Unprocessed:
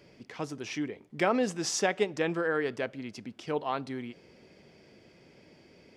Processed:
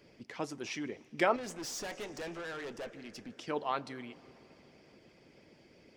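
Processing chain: two-slope reverb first 0.2 s, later 3.4 s, from -19 dB, DRR 11 dB; harmonic-percussive split harmonic -9 dB; 1.36–3.30 s: valve stage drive 38 dB, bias 0.4

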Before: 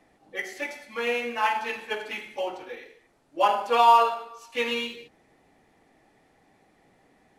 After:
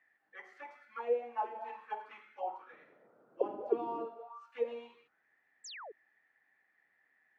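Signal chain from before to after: bass shelf 200 Hz +11.5 dB; 2.70–4.05 s: band noise 120–560 Hz -39 dBFS; auto-wah 320–1800 Hz, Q 7.8, down, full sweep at -18 dBFS; 5.64–5.92 s: painted sound fall 370–8200 Hz -48 dBFS; trim +1 dB

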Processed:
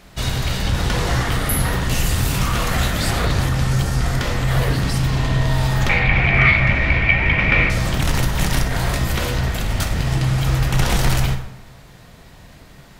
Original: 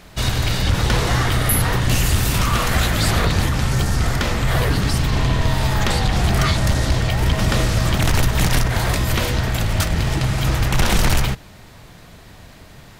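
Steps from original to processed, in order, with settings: 5.89–7.70 s: resonant low-pass 2.3 kHz, resonance Q 15; plate-style reverb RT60 0.9 s, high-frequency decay 0.6×, DRR 4.5 dB; trim -3 dB

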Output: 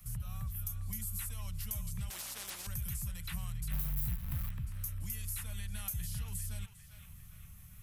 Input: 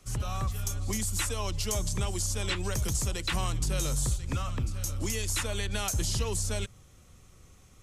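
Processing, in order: 3.72–4.51 s: square wave that keeps the level; FFT filter 180 Hz 0 dB, 370 Hz -28 dB, 570 Hz -16 dB, 1.8 kHz -7 dB, 6.9 kHz -11 dB, 13 kHz +13 dB; compression 2:1, threshold -50 dBFS, peak gain reduction 16.5 dB; on a send: band-passed feedback delay 400 ms, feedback 62%, band-pass 2 kHz, level -8 dB; 2.10–2.67 s: on the sum: spectrum-flattening compressor 10:1; trim +4 dB

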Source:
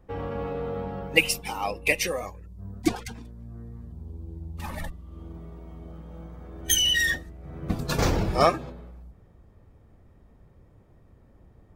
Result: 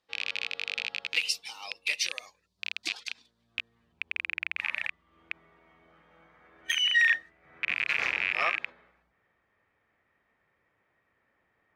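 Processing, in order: rattle on loud lows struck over -33 dBFS, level -11 dBFS; band-pass sweep 4.2 kHz -> 2 kHz, 3.18–4.32 s; peak limiter -19.5 dBFS, peak gain reduction 6 dB; trim +4.5 dB

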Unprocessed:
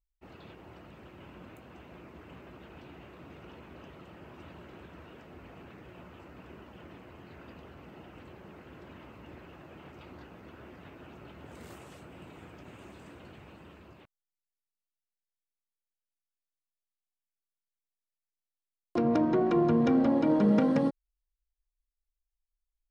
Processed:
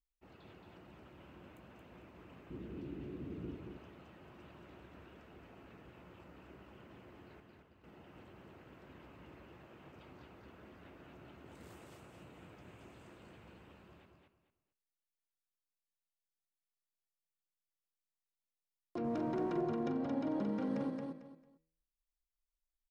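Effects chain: 2.50–3.55 s: resonant low shelf 490 Hz +12 dB, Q 1.5; 7.40–7.84 s: expander -41 dBFS; de-hum 80.5 Hz, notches 37; 19.04–19.61 s: waveshaping leveller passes 1; peak limiter -23 dBFS, peak gain reduction 9.5 dB; feedback delay 224 ms, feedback 25%, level -4 dB; trim -8 dB

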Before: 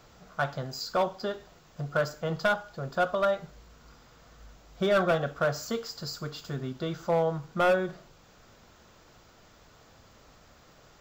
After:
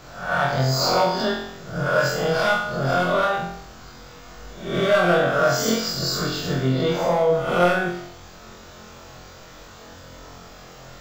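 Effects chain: reverse spectral sustain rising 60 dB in 0.59 s; in parallel at -1 dB: compressor with a negative ratio -31 dBFS, ratio -1; on the sum: flutter echo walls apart 3.9 m, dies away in 0.68 s

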